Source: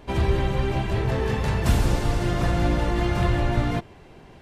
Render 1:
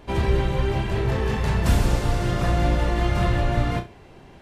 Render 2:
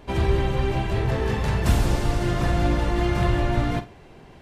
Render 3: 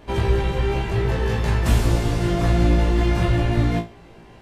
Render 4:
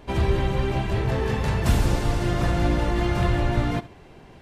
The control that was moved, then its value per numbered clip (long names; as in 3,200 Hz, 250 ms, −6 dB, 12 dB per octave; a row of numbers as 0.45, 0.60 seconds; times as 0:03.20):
flutter between parallel walls, walls apart: 5.6, 8.3, 3, 12.3 metres